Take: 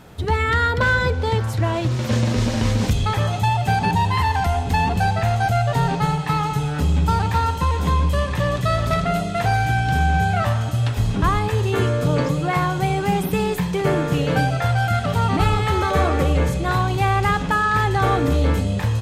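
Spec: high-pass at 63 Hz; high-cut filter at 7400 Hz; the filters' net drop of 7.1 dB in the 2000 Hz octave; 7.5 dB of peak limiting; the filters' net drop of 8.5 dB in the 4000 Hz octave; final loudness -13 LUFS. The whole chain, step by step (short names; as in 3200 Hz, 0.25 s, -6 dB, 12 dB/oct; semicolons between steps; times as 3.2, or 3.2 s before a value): HPF 63 Hz; LPF 7400 Hz; bell 2000 Hz -8.5 dB; bell 4000 Hz -7.5 dB; gain +10 dB; limiter -4 dBFS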